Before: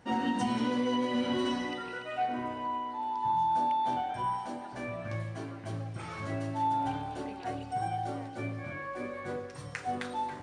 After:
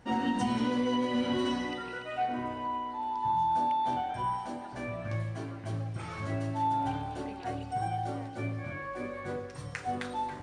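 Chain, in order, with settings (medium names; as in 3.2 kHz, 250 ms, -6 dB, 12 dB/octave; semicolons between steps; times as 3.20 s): bass shelf 64 Hz +12 dB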